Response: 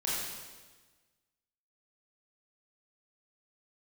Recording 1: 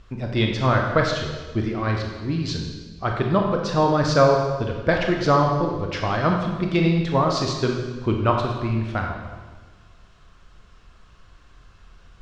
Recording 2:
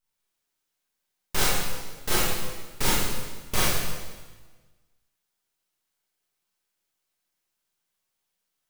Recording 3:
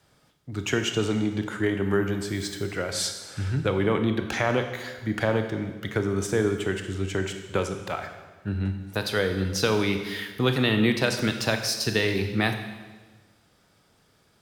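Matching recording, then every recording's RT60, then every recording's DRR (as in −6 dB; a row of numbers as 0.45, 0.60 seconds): 2; 1.3, 1.3, 1.3 seconds; 1.0, −7.5, 6.0 decibels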